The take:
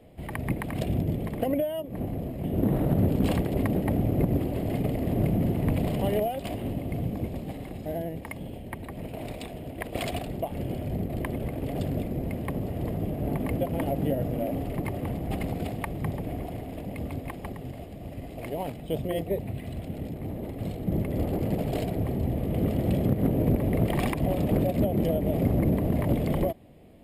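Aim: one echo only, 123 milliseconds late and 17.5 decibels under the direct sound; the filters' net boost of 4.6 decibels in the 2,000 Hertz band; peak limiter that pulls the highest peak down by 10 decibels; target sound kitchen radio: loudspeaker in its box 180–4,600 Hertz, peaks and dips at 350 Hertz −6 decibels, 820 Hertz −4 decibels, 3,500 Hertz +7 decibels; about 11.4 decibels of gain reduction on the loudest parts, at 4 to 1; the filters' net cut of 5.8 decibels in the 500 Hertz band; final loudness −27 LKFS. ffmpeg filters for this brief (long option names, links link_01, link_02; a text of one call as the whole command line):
ffmpeg -i in.wav -af "equalizer=frequency=500:width_type=o:gain=-5.5,equalizer=frequency=2000:width_type=o:gain=5,acompressor=threshold=-34dB:ratio=4,alimiter=level_in=5dB:limit=-24dB:level=0:latency=1,volume=-5dB,highpass=180,equalizer=frequency=350:width_type=q:width=4:gain=-6,equalizer=frequency=820:width_type=q:width=4:gain=-4,equalizer=frequency=3500:width_type=q:width=4:gain=7,lowpass=frequency=4600:width=0.5412,lowpass=frequency=4600:width=1.3066,aecho=1:1:123:0.133,volume=15.5dB" out.wav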